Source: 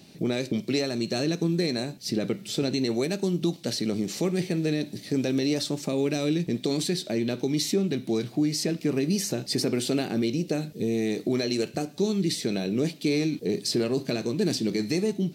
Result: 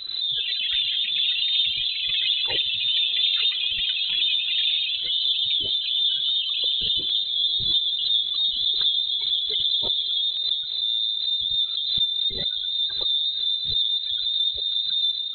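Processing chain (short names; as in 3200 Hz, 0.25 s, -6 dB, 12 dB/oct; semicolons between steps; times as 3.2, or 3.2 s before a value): steep high-pass 310 Hz 48 dB/oct; spectral gate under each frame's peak -10 dB strong; bell 400 Hz +5 dB 0.7 oct; reverse; upward compressor, threshold -26 dBFS; reverse; added noise brown -45 dBFS; air absorption 160 m; on a send: diffused feedback echo 0.547 s, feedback 75%, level -15.5 dB; on the sum: shoebox room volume 1900 m³, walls furnished, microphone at 0.58 m; echoes that change speed 0.131 s, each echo +7 st, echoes 3; inverted band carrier 4000 Hz; backwards sustainer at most 44 dB/s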